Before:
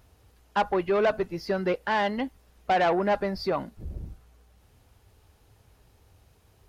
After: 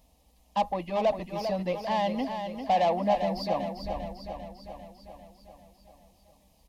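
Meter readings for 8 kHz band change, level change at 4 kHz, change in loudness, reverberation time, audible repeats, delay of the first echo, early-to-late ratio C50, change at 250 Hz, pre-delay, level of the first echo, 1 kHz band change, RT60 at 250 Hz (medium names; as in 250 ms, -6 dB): no reading, -1.0 dB, -2.5 dB, no reverb, 7, 397 ms, no reverb, -1.5 dB, no reverb, -7.5 dB, 0.0 dB, no reverb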